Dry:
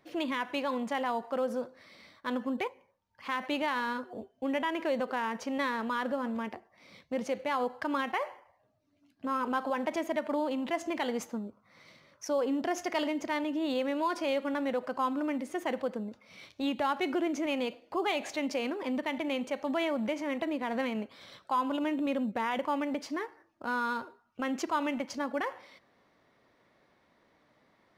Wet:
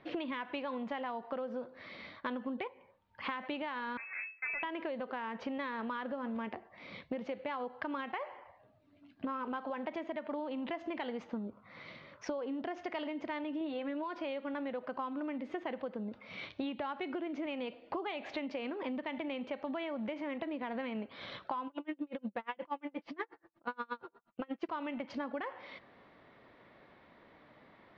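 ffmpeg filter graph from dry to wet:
-filter_complex "[0:a]asettb=1/sr,asplit=3[s0][s1][s2];[s0]atrim=end=3.974[s3];[s1]atrim=start=3.97:end=4.63,asetpts=PTS-STARTPTS,afade=t=in:d=0.004:c=qsin,afade=t=out:st=0.656:d=0.004:c=qsin,highpass=220,aeval=exprs='max(val(0),0)':c=same,lowpass=f=2200:t=q:w=0.5098,lowpass=f=2200:t=q:w=0.6013,lowpass=f=2200:t=q:w=0.9,lowpass=f=2200:t=q:w=2.563,afreqshift=-2600[s4];[s2]atrim=start=4.626[s5];[s3][s4]acrossfade=d=0.004:c1=hsin:c2=qsin[s6];[s6][s5]acrossfade=d=0.004:c1=qsin:c2=hsin,asettb=1/sr,asplit=3[s7][s8][s9];[s7]atrim=end=13.604[s10];[s8]atrim=start=13.6:end=14.04,asetpts=PTS-STARTPTS,afade=t=in:d=0.004:c=qsin,afade=t=out:st=0.436:d=0.004:c=qsin,aemphasis=mode=reproduction:type=50fm,aecho=1:1:6.5:0.57,atrim=end_sample=19404[s11];[s9]atrim=start=14.036[s12];[s10][s11]acrossfade=d=0.004:c1=hsin:c2=qsin[s13];[s13][s12]acrossfade=d=0.004:c1=qsin:c2=hsin,asettb=1/sr,asplit=3[s14][s15][s16];[s14]atrim=end=21.674[s17];[s15]atrim=start=21.67:end=24.69,asetpts=PTS-STARTPTS,afade=t=in:d=0.004:c=qsin,afade=t=out:st=3.016:d=0.004:c=qsin,aecho=1:1:5.9:0.44,atrim=end_sample=133182,aeval=exprs='val(0)*pow(10,-38*(0.5-0.5*cos(2*PI*8.4*n/s))/20)':c=same[s18];[s16]atrim=start=24.686[s19];[s17][s18]acrossfade=d=0.004:c1=hsin:c2=qsin[s20];[s20][s19]acrossfade=d=0.004:c1=qsin:c2=hsin,lowpass=f=3700:w=0.5412,lowpass=f=3700:w=1.3066,acompressor=threshold=0.00794:ratio=16,volume=2.24"

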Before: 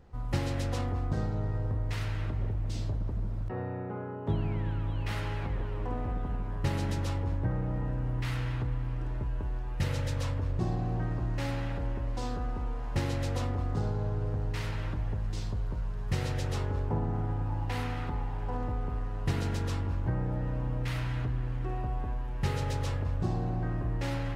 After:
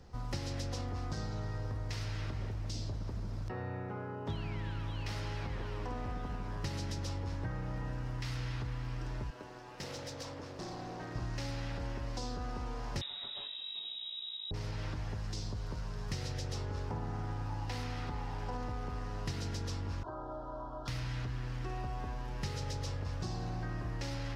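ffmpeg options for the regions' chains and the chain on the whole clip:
-filter_complex "[0:a]asettb=1/sr,asplit=3[s0][s1][s2];[s0]atrim=end=9.304[s3];[s1]atrim=start=9.3:end=11.15,asetpts=PTS-STARTPTS,afade=t=in:d=0.004:c=qsin,afade=t=out:st=1.846:d=0.004:c=qsin,highpass=260,volume=59.6,asoftclip=hard,volume=0.0168,tremolo=f=230:d=0.621[s4];[s2]atrim=start=11.146[s5];[s3][s4]acrossfade=d=0.004:c1=hsin:c2=qsin[s6];[s6][s5]acrossfade=d=0.004:c1=qsin:c2=hsin,asettb=1/sr,asplit=3[s7][s8][s9];[s7]atrim=end=13.014[s10];[s8]atrim=start=13.01:end=14.51,asetpts=PTS-STARTPTS,afade=t=in:d=0.004:c=qsin,afade=t=out:st=1.496:d=0.004:c=qsin,aecho=1:1:6.6:0.69,atrim=end_sample=66150,lowpass=f=3300:t=q:w=0.5098,lowpass=f=3300:t=q:w=0.6013,lowpass=f=3300:t=q:w=0.9,lowpass=f=3300:t=q:w=2.563,afreqshift=-3900[s11];[s9]atrim=start=14.506[s12];[s10][s11]acrossfade=d=0.004:c1=hsin:c2=qsin[s13];[s13][s12]acrossfade=d=0.004:c1=qsin:c2=hsin,asettb=1/sr,asplit=3[s14][s15][s16];[s14]atrim=end=20.034[s17];[s15]atrim=start=20.03:end=20.88,asetpts=PTS-STARTPTS,afade=t=in:d=0.004:c=qsin,afade=t=out:st=0.846:d=0.004:c=qsin,asuperstop=centerf=2200:order=8:qfactor=1.2,acrossover=split=480 2200:gain=0.1 1 0.0794[s18][s19][s20];[s18][s19][s20]amix=inputs=3:normalize=0,aecho=1:1:3:0.95,atrim=end_sample=37485[s21];[s16]atrim=start=20.876[s22];[s17][s21]acrossfade=d=0.004:c1=hsin:c2=qsin[s23];[s23][s22]acrossfade=d=0.004:c1=qsin:c2=hsin,equalizer=f=5300:w=1.4:g=12.5,acrossover=split=100|1000[s24][s25][s26];[s24]acompressor=threshold=0.00794:ratio=4[s27];[s25]acompressor=threshold=0.00794:ratio=4[s28];[s26]acompressor=threshold=0.00447:ratio=4[s29];[s27][s28][s29]amix=inputs=3:normalize=0,volume=1.12"

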